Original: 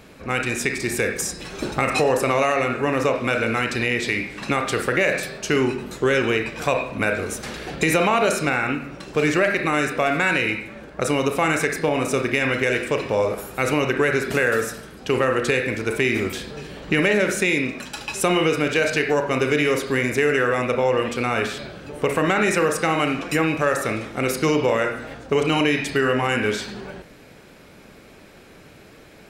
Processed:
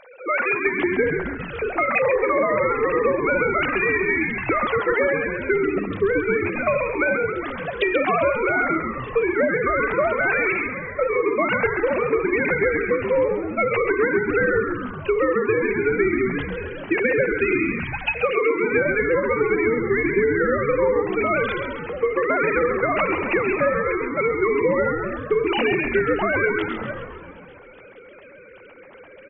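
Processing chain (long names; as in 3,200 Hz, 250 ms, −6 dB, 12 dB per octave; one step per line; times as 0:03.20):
three sine waves on the formant tracks
mains-hum notches 60/120/180/240/300/360/420 Hz
downward compressor, threshold −26 dBFS, peak gain reduction 14 dB
on a send: echo with shifted repeats 134 ms, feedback 62%, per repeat −100 Hz, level −7 dB
on the sum: level +7.5 dB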